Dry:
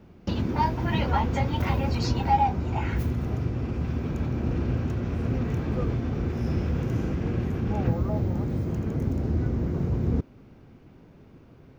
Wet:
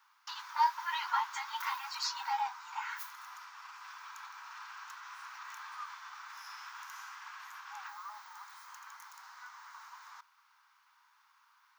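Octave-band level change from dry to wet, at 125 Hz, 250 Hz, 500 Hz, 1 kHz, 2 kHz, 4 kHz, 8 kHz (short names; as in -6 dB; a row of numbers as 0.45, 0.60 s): under -40 dB, under -40 dB, under -40 dB, -6.0 dB, -2.5 dB, -1.5 dB, n/a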